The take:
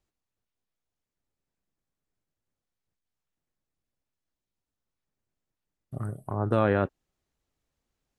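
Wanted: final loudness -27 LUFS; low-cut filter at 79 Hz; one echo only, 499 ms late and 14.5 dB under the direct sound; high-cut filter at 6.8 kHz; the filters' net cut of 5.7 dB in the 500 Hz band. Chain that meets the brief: high-pass 79 Hz; low-pass 6.8 kHz; peaking EQ 500 Hz -7 dB; delay 499 ms -14.5 dB; trim +4.5 dB

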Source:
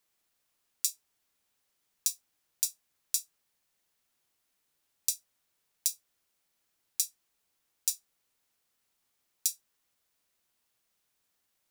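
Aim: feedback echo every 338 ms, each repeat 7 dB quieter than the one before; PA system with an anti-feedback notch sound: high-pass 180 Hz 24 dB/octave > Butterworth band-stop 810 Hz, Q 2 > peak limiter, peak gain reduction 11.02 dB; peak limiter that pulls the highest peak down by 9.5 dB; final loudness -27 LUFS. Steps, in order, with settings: peak limiter -14 dBFS; high-pass 180 Hz 24 dB/octave; Butterworth band-stop 810 Hz, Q 2; feedback delay 338 ms, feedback 45%, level -7 dB; trim +19.5 dB; peak limiter -5 dBFS

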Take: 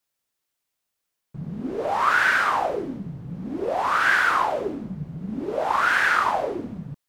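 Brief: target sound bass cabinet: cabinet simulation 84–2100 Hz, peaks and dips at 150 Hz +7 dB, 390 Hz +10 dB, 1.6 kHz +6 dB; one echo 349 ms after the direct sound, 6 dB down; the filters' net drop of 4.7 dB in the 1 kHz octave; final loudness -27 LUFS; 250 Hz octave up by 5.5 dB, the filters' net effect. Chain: cabinet simulation 84–2100 Hz, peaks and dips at 150 Hz +7 dB, 390 Hz +10 dB, 1.6 kHz +6 dB; peaking EQ 250 Hz +4 dB; peaking EQ 1 kHz -8.5 dB; delay 349 ms -6 dB; trim -5 dB

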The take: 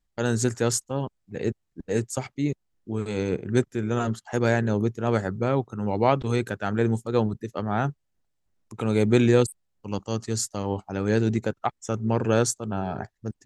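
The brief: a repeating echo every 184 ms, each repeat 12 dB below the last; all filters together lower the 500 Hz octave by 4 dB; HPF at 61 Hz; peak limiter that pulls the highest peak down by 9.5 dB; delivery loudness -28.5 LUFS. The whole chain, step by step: high-pass 61 Hz; peaking EQ 500 Hz -5 dB; peak limiter -17 dBFS; feedback delay 184 ms, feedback 25%, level -12 dB; trim +1.5 dB

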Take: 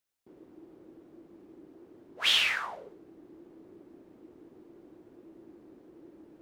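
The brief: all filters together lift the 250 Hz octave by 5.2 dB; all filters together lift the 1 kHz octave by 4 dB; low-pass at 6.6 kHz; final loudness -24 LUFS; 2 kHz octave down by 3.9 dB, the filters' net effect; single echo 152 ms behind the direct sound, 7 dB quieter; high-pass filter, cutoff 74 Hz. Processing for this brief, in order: high-pass 74 Hz; low-pass 6.6 kHz; peaking EQ 250 Hz +7 dB; peaking EQ 1 kHz +7 dB; peaking EQ 2 kHz -7 dB; delay 152 ms -7 dB; trim +5 dB

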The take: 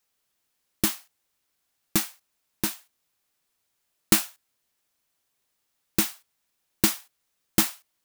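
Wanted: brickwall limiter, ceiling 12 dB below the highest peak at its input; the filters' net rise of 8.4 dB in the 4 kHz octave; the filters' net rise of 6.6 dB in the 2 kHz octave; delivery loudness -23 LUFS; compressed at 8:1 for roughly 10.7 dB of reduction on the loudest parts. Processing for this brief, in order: peaking EQ 2 kHz +5.5 dB; peaking EQ 4 kHz +9 dB; compression 8:1, threshold -24 dBFS; trim +13.5 dB; peak limiter -2 dBFS

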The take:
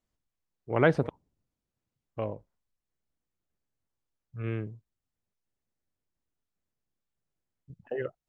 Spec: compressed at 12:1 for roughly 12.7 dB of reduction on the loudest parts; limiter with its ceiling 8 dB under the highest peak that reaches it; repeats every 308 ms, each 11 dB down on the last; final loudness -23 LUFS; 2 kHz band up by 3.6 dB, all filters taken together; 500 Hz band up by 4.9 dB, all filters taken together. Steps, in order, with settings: peaking EQ 500 Hz +5.5 dB; peaking EQ 2 kHz +4.5 dB; compression 12:1, threshold -25 dBFS; peak limiter -23 dBFS; feedback delay 308 ms, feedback 28%, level -11 dB; trim +15.5 dB

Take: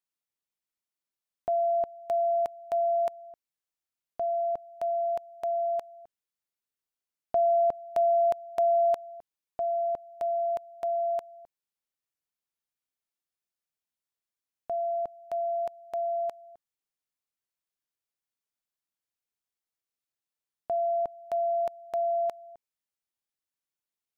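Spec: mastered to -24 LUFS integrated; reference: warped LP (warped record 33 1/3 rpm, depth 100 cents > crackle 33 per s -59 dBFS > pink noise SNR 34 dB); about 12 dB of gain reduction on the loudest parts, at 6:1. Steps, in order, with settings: compression 6:1, threshold -35 dBFS; warped record 33 1/3 rpm, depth 100 cents; crackle 33 per s -59 dBFS; pink noise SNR 34 dB; trim +14.5 dB

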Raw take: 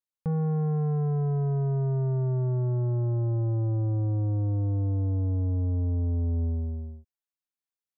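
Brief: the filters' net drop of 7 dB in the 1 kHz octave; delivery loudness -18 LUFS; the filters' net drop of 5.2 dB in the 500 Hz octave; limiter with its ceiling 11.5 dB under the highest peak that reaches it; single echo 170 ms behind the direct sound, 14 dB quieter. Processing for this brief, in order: peaking EQ 500 Hz -5.5 dB; peaking EQ 1 kHz -7.5 dB; peak limiter -36 dBFS; delay 170 ms -14 dB; trim +21.5 dB

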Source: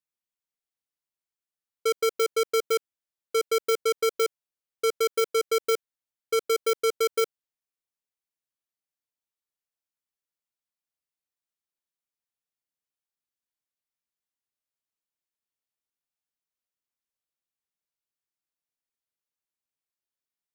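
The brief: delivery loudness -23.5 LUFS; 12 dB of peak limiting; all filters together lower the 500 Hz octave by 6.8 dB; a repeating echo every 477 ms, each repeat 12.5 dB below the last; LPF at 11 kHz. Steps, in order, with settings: low-pass 11 kHz; peaking EQ 500 Hz -7.5 dB; peak limiter -32 dBFS; feedback delay 477 ms, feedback 24%, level -12.5 dB; trim +19 dB

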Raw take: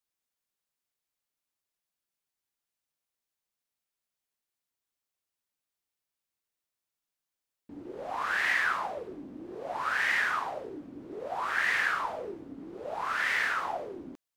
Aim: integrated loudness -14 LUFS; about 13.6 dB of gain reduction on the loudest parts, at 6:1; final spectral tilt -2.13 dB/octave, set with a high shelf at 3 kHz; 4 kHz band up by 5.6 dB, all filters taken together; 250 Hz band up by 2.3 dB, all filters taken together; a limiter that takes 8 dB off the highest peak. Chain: peaking EQ 250 Hz +3 dB; treble shelf 3 kHz +4 dB; peaking EQ 4 kHz +4.5 dB; compression 6:1, threshold -37 dBFS; trim +28.5 dB; peak limiter -5.5 dBFS

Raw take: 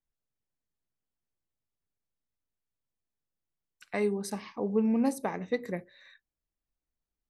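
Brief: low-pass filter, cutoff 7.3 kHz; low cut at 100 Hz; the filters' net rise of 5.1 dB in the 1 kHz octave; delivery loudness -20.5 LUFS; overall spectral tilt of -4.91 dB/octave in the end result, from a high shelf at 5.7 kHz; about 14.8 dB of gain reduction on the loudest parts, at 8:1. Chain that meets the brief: high-pass 100 Hz; low-pass 7.3 kHz; peaking EQ 1 kHz +6.5 dB; treble shelf 5.7 kHz +6 dB; compression 8:1, threshold -38 dBFS; trim +23 dB

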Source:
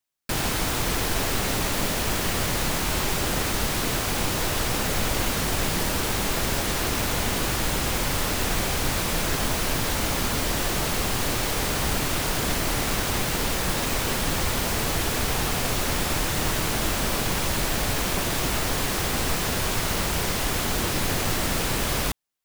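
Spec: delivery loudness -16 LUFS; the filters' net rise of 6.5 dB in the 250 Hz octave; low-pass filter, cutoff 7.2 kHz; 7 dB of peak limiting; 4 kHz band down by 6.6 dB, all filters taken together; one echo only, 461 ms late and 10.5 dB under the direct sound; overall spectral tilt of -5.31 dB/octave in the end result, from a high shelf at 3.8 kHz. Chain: low-pass 7.2 kHz; peaking EQ 250 Hz +8.5 dB; treble shelf 3.8 kHz -6.5 dB; peaking EQ 4 kHz -4 dB; peak limiter -17.5 dBFS; delay 461 ms -10.5 dB; trim +11 dB

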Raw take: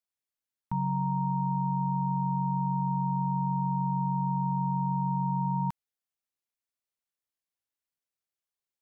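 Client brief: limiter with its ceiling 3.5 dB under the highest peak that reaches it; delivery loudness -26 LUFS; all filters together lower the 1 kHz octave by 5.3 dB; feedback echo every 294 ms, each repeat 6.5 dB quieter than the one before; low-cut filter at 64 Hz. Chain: high-pass 64 Hz; peaking EQ 1 kHz -5.5 dB; peak limiter -26 dBFS; feedback delay 294 ms, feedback 47%, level -6.5 dB; trim +8.5 dB

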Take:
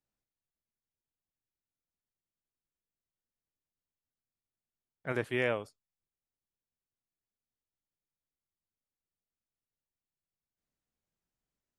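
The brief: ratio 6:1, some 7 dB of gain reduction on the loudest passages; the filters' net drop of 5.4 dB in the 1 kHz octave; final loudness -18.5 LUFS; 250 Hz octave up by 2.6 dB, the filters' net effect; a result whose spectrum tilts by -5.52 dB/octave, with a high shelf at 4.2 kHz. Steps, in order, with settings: peaking EQ 250 Hz +4 dB; peaking EQ 1 kHz -7.5 dB; treble shelf 4.2 kHz -8 dB; compression 6:1, threshold -33 dBFS; trim +22 dB

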